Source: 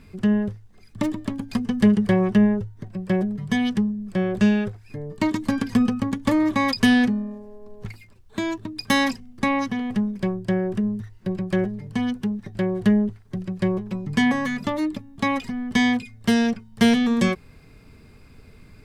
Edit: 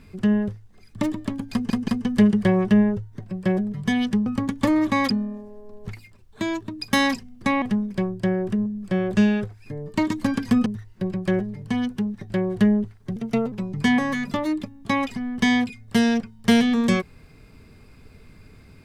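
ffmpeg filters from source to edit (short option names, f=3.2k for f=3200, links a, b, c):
-filter_complex "[0:a]asplit=10[a][b][c][d][e][f][g][h][i][j];[a]atrim=end=1.702[k];[b]atrim=start=1.518:end=1.702[l];[c]atrim=start=1.518:end=3.902[m];[d]atrim=start=5.898:end=6.742[n];[e]atrim=start=7.068:end=9.592[o];[f]atrim=start=9.868:end=10.912[p];[g]atrim=start=3.898:end=5.902[q];[h]atrim=start=10.908:end=13.414[r];[i]atrim=start=13.41:end=13.85,asetpts=PTS-STARTPTS,asetrate=53802,aresample=44100[s];[j]atrim=start=13.846[t];[k][l]acrossfade=d=0.004:c1=hsin:c2=hsin[u];[u][m]acrossfade=d=0.004:c1=hsin:c2=hsin[v];[v][n]acrossfade=d=0.004:c1=hsin:c2=hsin[w];[w][o]acrossfade=d=0.004:c1=hsin:c2=hsin[x];[x][p]acrossfade=d=0.004:c1=hsin:c2=hsin[y];[y][q]acrossfade=d=0.004:c1=hsin:c2=hsin[z];[z][r]acrossfade=d=0.004:c1=hsin:c2=hsin[aa];[aa][s]acrossfade=d=0.004:c1=hsin:c2=hsin[ab];[ab][t]acrossfade=d=0.004:c1=hsin:c2=hsin"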